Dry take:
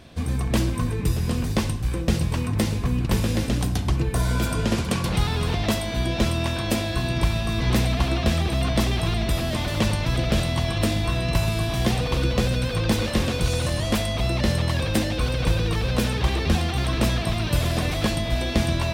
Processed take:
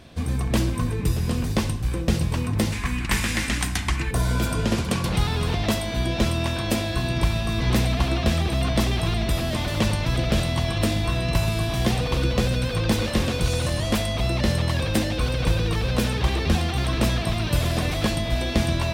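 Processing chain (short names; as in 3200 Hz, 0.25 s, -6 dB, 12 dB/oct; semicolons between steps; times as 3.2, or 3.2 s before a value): 2.72–4.11 ten-band EQ 125 Hz -8 dB, 500 Hz -10 dB, 1000 Hz +3 dB, 2000 Hz +12 dB, 8000 Hz +7 dB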